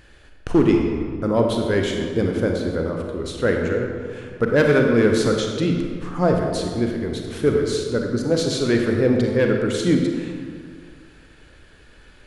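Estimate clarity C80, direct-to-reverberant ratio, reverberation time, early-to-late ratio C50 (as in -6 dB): 4.0 dB, 1.5 dB, 1.9 s, 2.5 dB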